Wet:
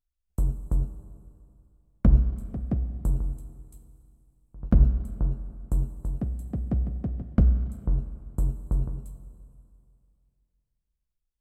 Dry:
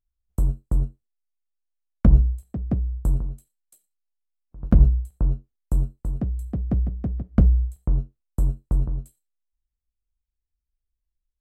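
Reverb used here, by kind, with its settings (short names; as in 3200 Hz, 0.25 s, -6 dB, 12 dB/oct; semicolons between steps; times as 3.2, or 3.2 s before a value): Schroeder reverb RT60 2.5 s, combs from 31 ms, DRR 10 dB; gain -3.5 dB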